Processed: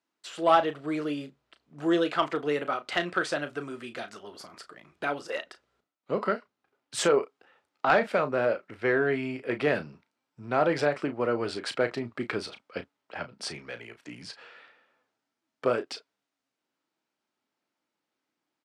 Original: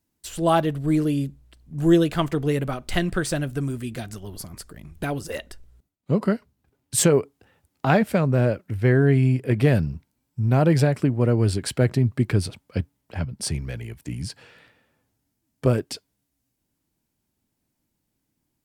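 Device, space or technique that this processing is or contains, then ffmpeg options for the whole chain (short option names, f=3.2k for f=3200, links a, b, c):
intercom: -filter_complex "[0:a]highpass=460,lowpass=4.2k,equalizer=f=1.3k:t=o:w=0.3:g=6,asoftclip=type=tanh:threshold=-10.5dB,asplit=2[a][b];[b]adelay=34,volume=-10.5dB[c];[a][c]amix=inputs=2:normalize=0"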